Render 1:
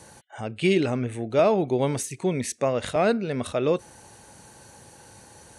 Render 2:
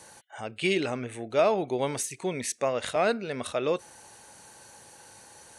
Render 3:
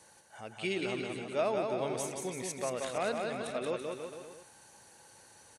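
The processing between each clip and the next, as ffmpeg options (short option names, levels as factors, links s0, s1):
-af "lowshelf=f=350:g=-11.5"
-af "aecho=1:1:180|333|463|573.6|667.6:0.631|0.398|0.251|0.158|0.1,volume=0.376"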